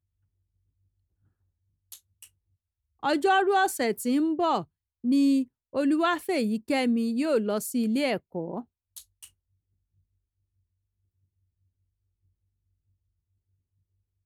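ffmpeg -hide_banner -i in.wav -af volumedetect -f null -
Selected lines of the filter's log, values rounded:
mean_volume: -29.6 dB
max_volume: -13.3 dB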